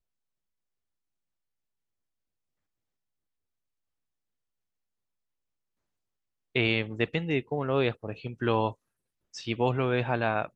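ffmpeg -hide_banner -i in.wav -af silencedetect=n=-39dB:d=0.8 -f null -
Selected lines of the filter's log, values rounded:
silence_start: 0.00
silence_end: 6.56 | silence_duration: 6.56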